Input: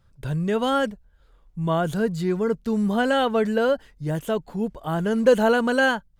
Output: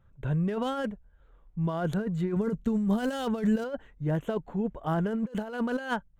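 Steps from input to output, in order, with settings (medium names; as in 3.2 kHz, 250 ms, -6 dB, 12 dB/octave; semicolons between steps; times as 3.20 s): local Wiener filter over 9 samples; compressor with a negative ratio -24 dBFS, ratio -0.5; 2.36–3.64 s: tone controls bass +6 dB, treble +12 dB; trim -4.5 dB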